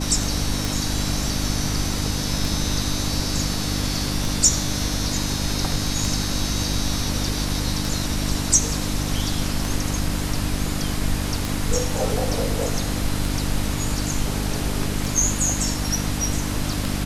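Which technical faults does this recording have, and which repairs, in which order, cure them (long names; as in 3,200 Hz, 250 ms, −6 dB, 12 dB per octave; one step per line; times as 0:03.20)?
mains hum 50 Hz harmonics 6 −27 dBFS
scratch tick 33 1/3 rpm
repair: click removal
hum removal 50 Hz, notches 6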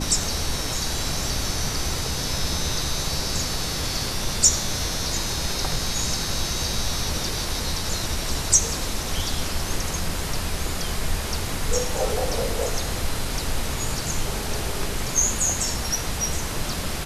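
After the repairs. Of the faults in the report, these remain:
none of them is left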